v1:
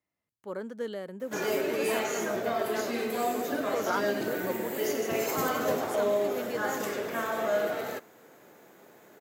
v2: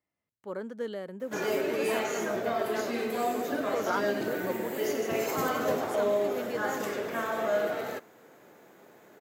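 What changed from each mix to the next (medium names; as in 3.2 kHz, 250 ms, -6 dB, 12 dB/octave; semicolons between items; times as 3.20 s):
master: add treble shelf 5.2 kHz -4.5 dB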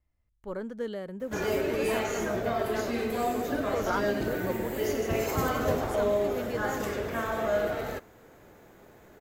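master: remove Bessel high-pass 210 Hz, order 4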